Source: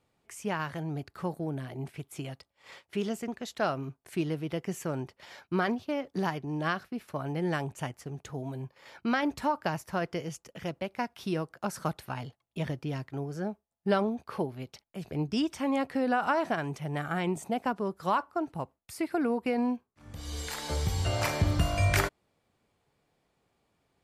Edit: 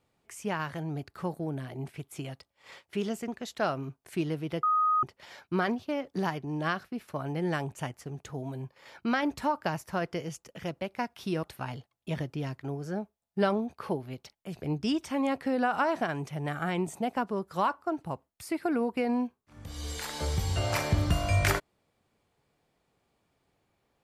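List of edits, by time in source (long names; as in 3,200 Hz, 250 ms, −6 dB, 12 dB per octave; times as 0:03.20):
0:04.63–0:05.03: beep over 1,250 Hz −22 dBFS
0:11.43–0:11.92: remove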